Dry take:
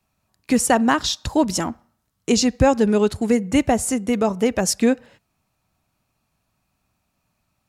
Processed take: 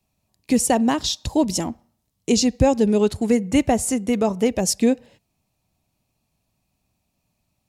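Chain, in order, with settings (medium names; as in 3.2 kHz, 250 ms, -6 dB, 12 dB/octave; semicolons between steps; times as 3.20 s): peaking EQ 1.4 kHz -12.5 dB 0.85 oct, from 3.01 s -5.5 dB, from 4.48 s -12.5 dB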